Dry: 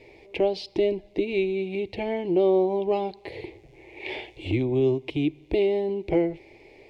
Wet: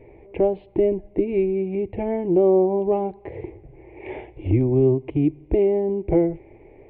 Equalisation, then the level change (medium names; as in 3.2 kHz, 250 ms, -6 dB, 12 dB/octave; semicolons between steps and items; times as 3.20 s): Gaussian low-pass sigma 4.8 samples; bass shelf 160 Hz +8 dB; +3.0 dB